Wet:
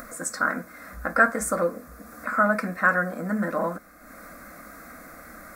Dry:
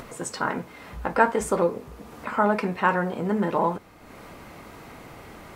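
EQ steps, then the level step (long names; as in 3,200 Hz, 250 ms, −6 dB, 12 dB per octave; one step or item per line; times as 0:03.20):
parametric band 1,500 Hz +6.5 dB 0.84 octaves
high-shelf EQ 8,400 Hz +12 dB
phaser with its sweep stopped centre 600 Hz, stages 8
0.0 dB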